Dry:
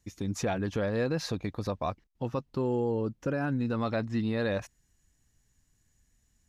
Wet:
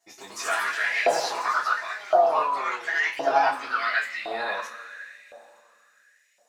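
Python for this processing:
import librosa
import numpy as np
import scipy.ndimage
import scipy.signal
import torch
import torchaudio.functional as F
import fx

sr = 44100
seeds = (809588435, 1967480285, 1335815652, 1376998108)

y = fx.echo_pitch(x, sr, ms=124, semitones=3, count=3, db_per_echo=-3.0)
y = fx.rev_double_slope(y, sr, seeds[0], early_s=0.23, late_s=3.2, knee_db=-20, drr_db=-7.0)
y = fx.filter_lfo_highpass(y, sr, shape='saw_up', hz=0.94, low_hz=680.0, high_hz=2300.0, q=5.4)
y = y * librosa.db_to_amplitude(-3.0)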